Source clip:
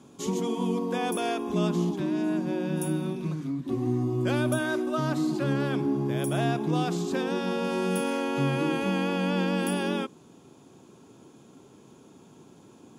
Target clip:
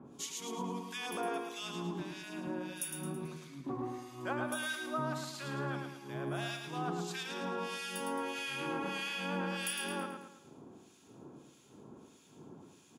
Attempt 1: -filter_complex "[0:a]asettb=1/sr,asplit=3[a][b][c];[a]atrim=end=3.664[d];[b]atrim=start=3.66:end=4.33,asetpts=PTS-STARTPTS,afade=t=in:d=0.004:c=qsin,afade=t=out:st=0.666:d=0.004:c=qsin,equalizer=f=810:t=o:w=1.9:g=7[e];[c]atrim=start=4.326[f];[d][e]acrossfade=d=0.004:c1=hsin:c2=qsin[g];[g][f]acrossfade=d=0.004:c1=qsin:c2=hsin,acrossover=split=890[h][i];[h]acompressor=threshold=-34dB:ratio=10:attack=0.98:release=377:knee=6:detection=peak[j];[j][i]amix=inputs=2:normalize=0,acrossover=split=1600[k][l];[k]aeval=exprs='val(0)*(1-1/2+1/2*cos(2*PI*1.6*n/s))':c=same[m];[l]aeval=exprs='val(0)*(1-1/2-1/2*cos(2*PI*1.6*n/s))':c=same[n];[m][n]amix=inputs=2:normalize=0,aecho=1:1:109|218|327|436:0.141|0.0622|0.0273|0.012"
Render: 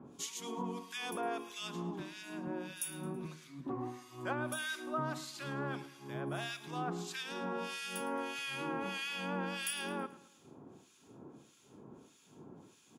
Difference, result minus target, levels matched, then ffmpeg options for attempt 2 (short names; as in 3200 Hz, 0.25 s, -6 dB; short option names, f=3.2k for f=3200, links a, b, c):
echo-to-direct -11.5 dB
-filter_complex "[0:a]asettb=1/sr,asplit=3[a][b][c];[a]atrim=end=3.664[d];[b]atrim=start=3.66:end=4.33,asetpts=PTS-STARTPTS,afade=t=in:d=0.004:c=qsin,afade=t=out:st=0.666:d=0.004:c=qsin,equalizer=f=810:t=o:w=1.9:g=7[e];[c]atrim=start=4.326[f];[d][e]acrossfade=d=0.004:c1=hsin:c2=qsin[g];[g][f]acrossfade=d=0.004:c1=qsin:c2=hsin,acrossover=split=890[h][i];[h]acompressor=threshold=-34dB:ratio=10:attack=0.98:release=377:knee=6:detection=peak[j];[j][i]amix=inputs=2:normalize=0,acrossover=split=1600[k][l];[k]aeval=exprs='val(0)*(1-1/2+1/2*cos(2*PI*1.6*n/s))':c=same[m];[l]aeval=exprs='val(0)*(1-1/2-1/2*cos(2*PI*1.6*n/s))':c=same[n];[m][n]amix=inputs=2:normalize=0,aecho=1:1:109|218|327|436|545:0.531|0.234|0.103|0.0452|0.0199"